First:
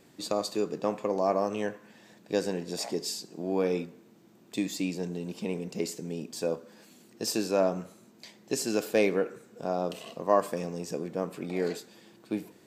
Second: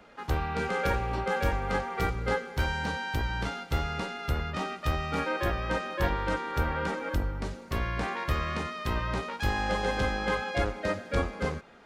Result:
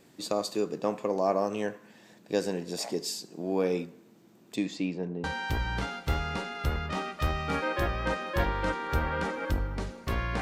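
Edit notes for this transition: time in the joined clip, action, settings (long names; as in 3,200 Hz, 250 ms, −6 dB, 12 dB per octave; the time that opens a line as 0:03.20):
first
0:04.55–0:05.24: low-pass filter 7,100 Hz → 1,200 Hz
0:05.24: continue with second from 0:02.88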